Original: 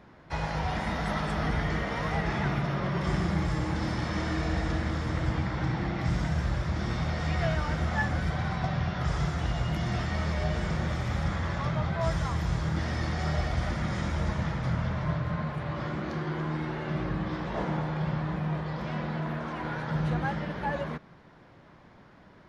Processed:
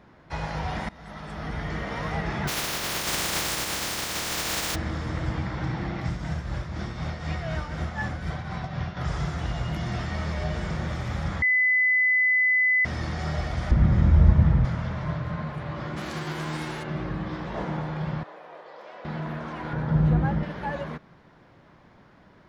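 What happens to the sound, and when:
0.89–1.95 s: fade in, from -21 dB
2.47–4.74 s: spectral contrast reduction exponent 0.17
6.00–8.97 s: tremolo triangle 4 Hz, depth 55%
11.42–12.85 s: bleep 2.01 kHz -18 dBFS
13.71–14.65 s: RIAA curve playback
15.96–16.82 s: formants flattened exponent 0.6
18.23–19.05 s: ladder high-pass 410 Hz, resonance 40%
19.73–20.43 s: tilt EQ -3 dB/octave

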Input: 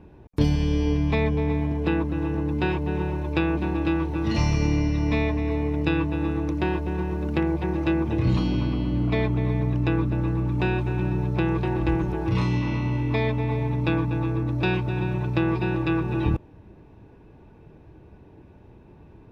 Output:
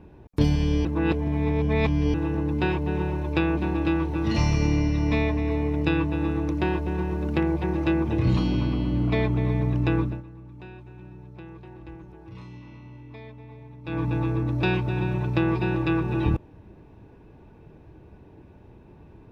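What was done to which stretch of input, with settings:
0.85–2.14 s: reverse
10.00–14.07 s: dip -19 dB, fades 0.23 s

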